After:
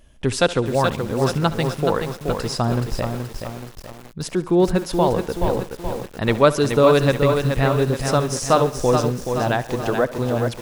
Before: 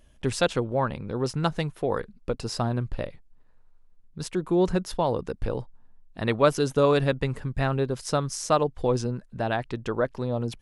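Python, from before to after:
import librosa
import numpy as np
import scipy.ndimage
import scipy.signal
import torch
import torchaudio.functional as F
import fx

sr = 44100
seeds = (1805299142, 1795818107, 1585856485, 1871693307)

y = fx.echo_thinned(x, sr, ms=69, feedback_pct=64, hz=180.0, wet_db=-17.5)
y = fx.echo_crushed(y, sr, ms=426, feedback_pct=55, bits=7, wet_db=-5.5)
y = y * librosa.db_to_amplitude(5.5)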